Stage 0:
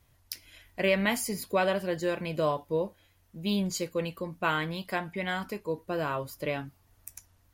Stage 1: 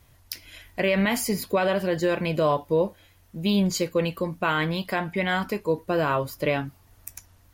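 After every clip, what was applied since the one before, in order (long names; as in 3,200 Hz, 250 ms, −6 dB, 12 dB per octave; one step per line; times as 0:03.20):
dynamic equaliser 9,300 Hz, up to −5 dB, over −53 dBFS, Q 0.76
brickwall limiter −21 dBFS, peak gain reduction 7 dB
level +8 dB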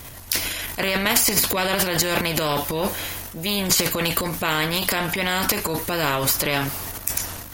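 high-shelf EQ 7,100 Hz +6 dB
transient designer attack −4 dB, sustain +11 dB
every bin compressed towards the loudest bin 2 to 1
level +7 dB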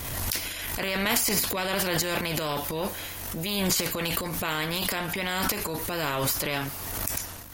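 background raised ahead of every attack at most 27 dB per second
level −7 dB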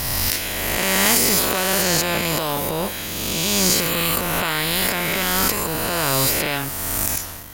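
peak hold with a rise ahead of every peak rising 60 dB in 2.13 s
level +3 dB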